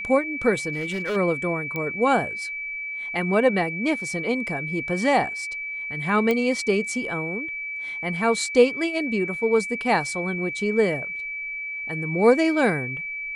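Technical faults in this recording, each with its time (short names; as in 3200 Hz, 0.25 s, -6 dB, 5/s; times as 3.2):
tone 2300 Hz -29 dBFS
0.72–1.17 clipped -23 dBFS
1.76 pop -16 dBFS
6.31 pop -11 dBFS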